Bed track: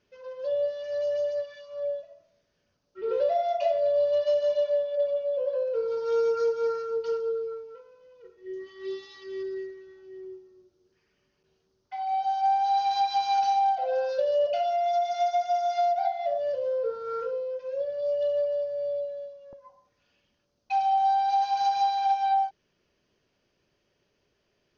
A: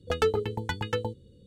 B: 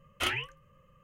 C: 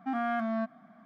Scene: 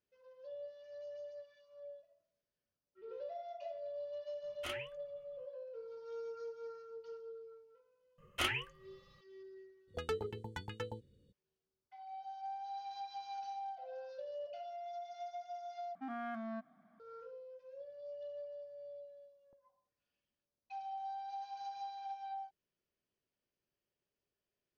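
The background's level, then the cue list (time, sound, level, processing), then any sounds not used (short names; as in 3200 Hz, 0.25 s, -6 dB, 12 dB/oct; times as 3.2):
bed track -20 dB
4.43 add B -13 dB
8.18 add B -4 dB
9.87 add A -13 dB, fades 0.02 s
15.95 replace with C -11.5 dB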